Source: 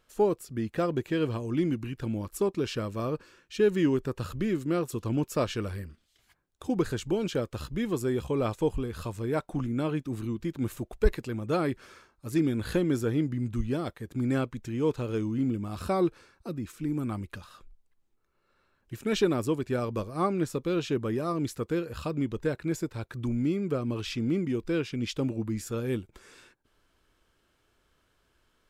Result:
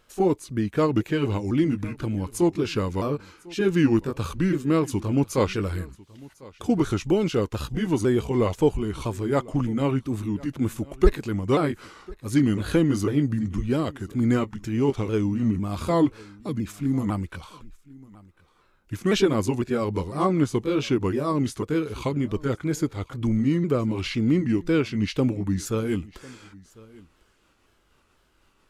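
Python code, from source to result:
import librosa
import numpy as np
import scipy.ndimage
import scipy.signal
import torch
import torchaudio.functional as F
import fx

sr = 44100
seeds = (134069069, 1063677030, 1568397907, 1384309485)

p1 = fx.pitch_ramps(x, sr, semitones=-3.0, every_ms=503)
p2 = p1 + fx.echo_single(p1, sr, ms=1049, db=-22.5, dry=0)
y = F.gain(torch.from_numpy(p2), 7.0).numpy()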